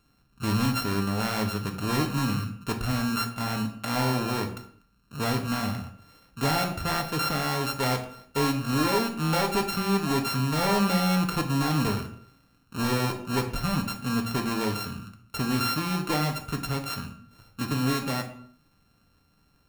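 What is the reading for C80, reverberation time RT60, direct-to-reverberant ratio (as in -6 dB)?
13.5 dB, 0.60 s, 3.5 dB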